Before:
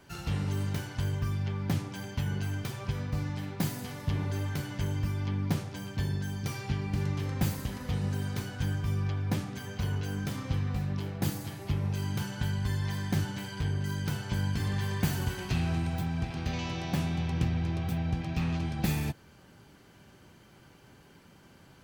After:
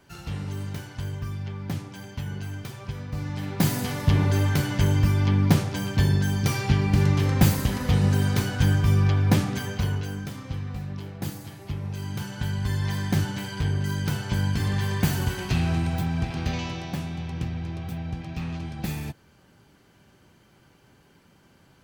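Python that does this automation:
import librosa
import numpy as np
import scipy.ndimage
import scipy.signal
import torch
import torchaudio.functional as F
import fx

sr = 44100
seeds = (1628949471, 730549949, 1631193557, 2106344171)

y = fx.gain(x, sr, db=fx.line((3.06, -1.0), (3.75, 10.5), (9.55, 10.5), (10.33, -1.5), (11.84, -1.5), (12.9, 5.5), (16.48, 5.5), (17.01, -1.5)))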